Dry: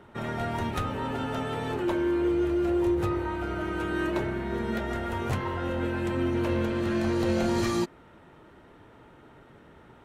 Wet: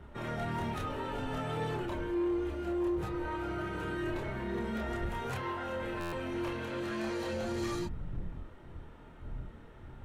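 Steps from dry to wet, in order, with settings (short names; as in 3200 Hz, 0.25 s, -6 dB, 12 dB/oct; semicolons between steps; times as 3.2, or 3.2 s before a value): wind noise 100 Hz -40 dBFS; 5.09–7.33 low shelf 310 Hz -10.5 dB; limiter -22.5 dBFS, peak gain reduction 6.5 dB; chorus voices 4, 0.23 Hz, delay 28 ms, depth 4.5 ms; soft clip -26.5 dBFS, distortion -18 dB; stuck buffer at 6, samples 512, times 10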